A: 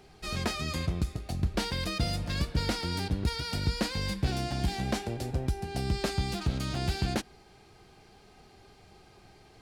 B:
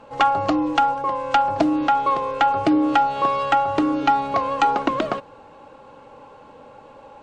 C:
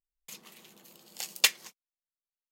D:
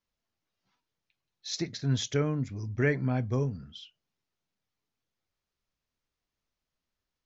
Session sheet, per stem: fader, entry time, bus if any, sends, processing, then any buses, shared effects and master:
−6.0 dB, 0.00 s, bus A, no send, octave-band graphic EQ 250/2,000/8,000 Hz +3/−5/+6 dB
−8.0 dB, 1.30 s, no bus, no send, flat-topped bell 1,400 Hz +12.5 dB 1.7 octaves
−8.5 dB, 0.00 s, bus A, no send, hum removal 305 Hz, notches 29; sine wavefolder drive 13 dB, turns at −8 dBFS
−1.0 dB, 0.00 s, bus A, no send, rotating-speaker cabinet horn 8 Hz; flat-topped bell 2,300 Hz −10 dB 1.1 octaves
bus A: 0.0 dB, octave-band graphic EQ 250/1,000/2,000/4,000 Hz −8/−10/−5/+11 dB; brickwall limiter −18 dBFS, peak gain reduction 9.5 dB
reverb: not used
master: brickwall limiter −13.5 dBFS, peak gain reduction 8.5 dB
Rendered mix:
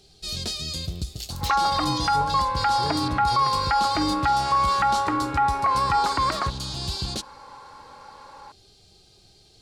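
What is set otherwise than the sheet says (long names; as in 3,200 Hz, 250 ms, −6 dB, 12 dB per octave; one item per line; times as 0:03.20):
stem A −6.0 dB → 0.0 dB
stem C −8.5 dB → −19.5 dB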